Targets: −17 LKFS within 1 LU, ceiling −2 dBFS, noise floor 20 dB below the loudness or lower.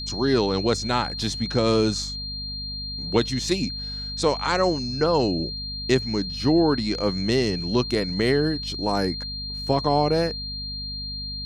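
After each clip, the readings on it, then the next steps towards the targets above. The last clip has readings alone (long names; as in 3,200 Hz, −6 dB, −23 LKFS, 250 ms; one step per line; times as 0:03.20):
mains hum 50 Hz; hum harmonics up to 250 Hz; level of the hum −34 dBFS; interfering tone 4,200 Hz; level of the tone −31 dBFS; integrated loudness −24.0 LKFS; sample peak −7.5 dBFS; target loudness −17.0 LKFS
→ hum removal 50 Hz, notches 5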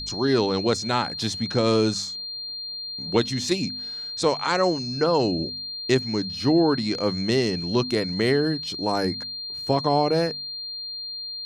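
mains hum none found; interfering tone 4,200 Hz; level of the tone −31 dBFS
→ notch filter 4,200 Hz, Q 30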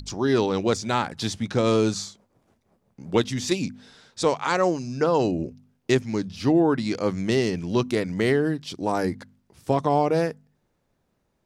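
interfering tone none found; integrated loudness −24.5 LKFS; sample peak −7.5 dBFS; target loudness −17.0 LKFS
→ level +7.5 dB
brickwall limiter −2 dBFS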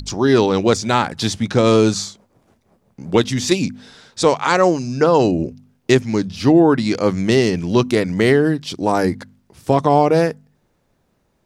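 integrated loudness −17.0 LKFS; sample peak −2.0 dBFS; background noise floor −65 dBFS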